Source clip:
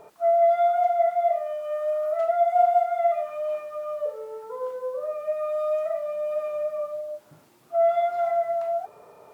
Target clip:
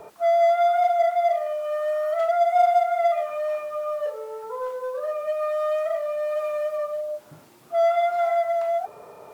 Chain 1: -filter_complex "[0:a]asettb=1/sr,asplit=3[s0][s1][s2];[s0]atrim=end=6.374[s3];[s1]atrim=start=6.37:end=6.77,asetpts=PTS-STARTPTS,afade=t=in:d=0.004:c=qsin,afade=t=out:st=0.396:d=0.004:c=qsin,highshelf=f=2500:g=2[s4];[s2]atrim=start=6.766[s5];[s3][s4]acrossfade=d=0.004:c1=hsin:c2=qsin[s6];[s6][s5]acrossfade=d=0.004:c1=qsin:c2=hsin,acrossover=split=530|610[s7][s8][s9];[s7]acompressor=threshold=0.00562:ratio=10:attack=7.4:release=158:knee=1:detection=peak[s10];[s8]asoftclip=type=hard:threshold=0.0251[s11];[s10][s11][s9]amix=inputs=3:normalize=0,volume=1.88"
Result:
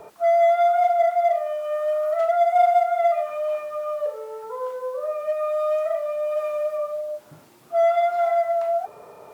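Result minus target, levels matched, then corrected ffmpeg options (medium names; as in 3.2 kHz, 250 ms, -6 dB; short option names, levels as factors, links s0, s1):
hard clipper: distortion -6 dB
-filter_complex "[0:a]asettb=1/sr,asplit=3[s0][s1][s2];[s0]atrim=end=6.374[s3];[s1]atrim=start=6.37:end=6.77,asetpts=PTS-STARTPTS,afade=t=in:d=0.004:c=qsin,afade=t=out:st=0.396:d=0.004:c=qsin,highshelf=f=2500:g=2[s4];[s2]atrim=start=6.766[s5];[s3][s4]acrossfade=d=0.004:c1=hsin:c2=qsin[s6];[s6][s5]acrossfade=d=0.004:c1=qsin:c2=hsin,acrossover=split=530|610[s7][s8][s9];[s7]acompressor=threshold=0.00562:ratio=10:attack=7.4:release=158:knee=1:detection=peak[s10];[s8]asoftclip=type=hard:threshold=0.0112[s11];[s10][s11][s9]amix=inputs=3:normalize=0,volume=1.88"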